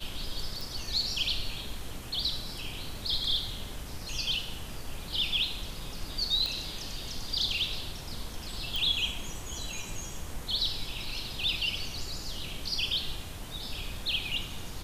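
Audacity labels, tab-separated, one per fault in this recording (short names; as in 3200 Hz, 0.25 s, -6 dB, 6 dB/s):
0.610000	0.610000	pop
6.460000	6.460000	pop -19 dBFS
8.760000	8.760000	pop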